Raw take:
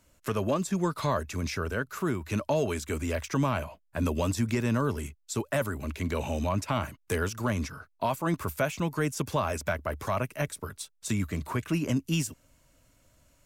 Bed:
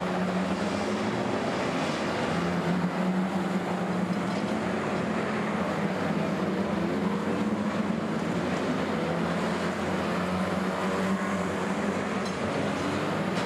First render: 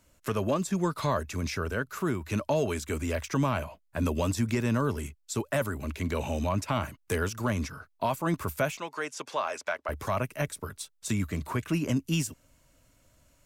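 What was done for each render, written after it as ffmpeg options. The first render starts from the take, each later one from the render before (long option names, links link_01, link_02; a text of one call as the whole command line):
ffmpeg -i in.wav -filter_complex "[0:a]asettb=1/sr,asplit=3[link_01][link_02][link_03];[link_01]atrim=end=8.774[link_04];[link_02]atrim=start=8.77:end=9.89,asetpts=PTS-STARTPTS,afade=type=in:duration=0.004:curve=qsin,afade=type=out:start_time=1.116:duration=0.004:curve=qsin,highpass=550,lowpass=6500[link_05];[link_03]atrim=start=9.886[link_06];[link_04][link_05]acrossfade=duration=0.004:curve1=hsin:curve2=qsin[link_07];[link_07][link_06]acrossfade=duration=0.004:curve1=qsin:curve2=hsin" out.wav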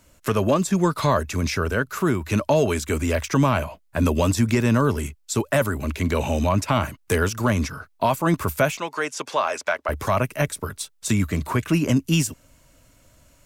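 ffmpeg -i in.wav -af "volume=8dB" out.wav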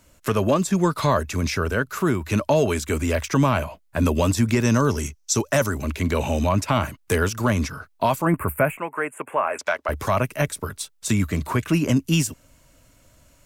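ffmpeg -i in.wav -filter_complex "[0:a]asettb=1/sr,asplit=3[link_01][link_02][link_03];[link_01]atrim=end=4.634[link_04];[link_02]atrim=start=4.63:end=5.82,asetpts=PTS-STARTPTS,afade=type=in:duration=0.004:curve=qsin,afade=type=out:start_time=1.186:duration=0.004:curve=qsin,equalizer=frequency=5900:width=3.4:gain=14.5[link_05];[link_03]atrim=start=5.816[link_06];[link_04][link_05]acrossfade=duration=0.004:curve1=hsin:curve2=qsin[link_07];[link_07][link_06]acrossfade=duration=0.004:curve1=qsin:curve2=hsin,asettb=1/sr,asplit=3[link_08][link_09][link_10];[link_08]atrim=end=8.254[link_11];[link_09]atrim=start=8.25:end=9.59,asetpts=PTS-STARTPTS,afade=type=in:duration=0.004:curve=qsin,afade=type=out:start_time=1.336:duration=0.004:curve=qsin,asuperstop=centerf=4800:order=8:qfactor=0.79[link_12];[link_10]atrim=start=9.586[link_13];[link_11][link_12]acrossfade=duration=0.004:curve1=hsin:curve2=qsin[link_14];[link_14][link_13]acrossfade=duration=0.004:curve1=qsin:curve2=hsin" out.wav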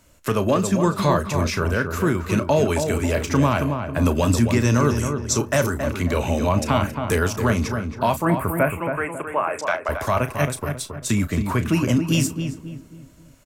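ffmpeg -i in.wav -filter_complex "[0:a]asplit=2[link_01][link_02];[link_02]adelay=34,volume=-12dB[link_03];[link_01][link_03]amix=inputs=2:normalize=0,asplit=2[link_04][link_05];[link_05]adelay=272,lowpass=frequency=1600:poles=1,volume=-6dB,asplit=2[link_06][link_07];[link_07]adelay=272,lowpass=frequency=1600:poles=1,volume=0.4,asplit=2[link_08][link_09];[link_09]adelay=272,lowpass=frequency=1600:poles=1,volume=0.4,asplit=2[link_10][link_11];[link_11]adelay=272,lowpass=frequency=1600:poles=1,volume=0.4,asplit=2[link_12][link_13];[link_13]adelay=272,lowpass=frequency=1600:poles=1,volume=0.4[link_14];[link_04][link_06][link_08][link_10][link_12][link_14]amix=inputs=6:normalize=0" out.wav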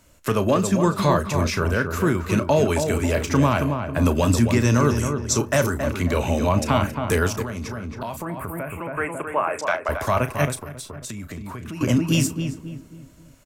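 ffmpeg -i in.wav -filter_complex "[0:a]asettb=1/sr,asplit=3[link_01][link_02][link_03];[link_01]atrim=end=7.424[link_04];[link_02]atrim=start=7.42:end=8.97,asetpts=PTS-STARTPTS,afade=type=in:duration=0.004:curve=qsin,afade=type=out:start_time=1.546:duration=0.004:curve=qsin,acompressor=threshold=-27dB:ratio=5:attack=3.2:release=140:knee=1:detection=peak[link_05];[link_03]atrim=start=8.966[link_06];[link_04][link_05]acrossfade=duration=0.004:curve1=hsin:curve2=qsin[link_07];[link_07][link_06]acrossfade=duration=0.004:curve1=qsin:curve2=hsin,asettb=1/sr,asplit=3[link_08][link_09][link_10];[link_08]atrim=end=10.554[link_11];[link_09]atrim=start=10.55:end=11.81,asetpts=PTS-STARTPTS,afade=type=in:duration=0.004:curve=qsin,afade=type=out:start_time=1.256:duration=0.004:curve=qsin,acompressor=threshold=-31dB:ratio=6:attack=3.2:release=140:knee=1:detection=peak[link_12];[link_10]atrim=start=11.806[link_13];[link_11][link_12]acrossfade=duration=0.004:curve1=hsin:curve2=qsin[link_14];[link_14][link_13]acrossfade=duration=0.004:curve1=qsin:curve2=hsin" out.wav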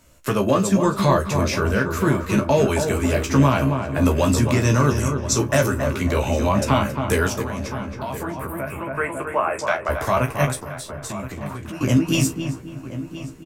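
ffmpeg -i in.wav -filter_complex "[0:a]asplit=2[link_01][link_02];[link_02]adelay=15,volume=-5dB[link_03];[link_01][link_03]amix=inputs=2:normalize=0,asplit=2[link_04][link_05];[link_05]adelay=1025,lowpass=frequency=2200:poles=1,volume=-13dB,asplit=2[link_06][link_07];[link_07]adelay=1025,lowpass=frequency=2200:poles=1,volume=0.4,asplit=2[link_08][link_09];[link_09]adelay=1025,lowpass=frequency=2200:poles=1,volume=0.4,asplit=2[link_10][link_11];[link_11]adelay=1025,lowpass=frequency=2200:poles=1,volume=0.4[link_12];[link_04][link_06][link_08][link_10][link_12]amix=inputs=5:normalize=0" out.wav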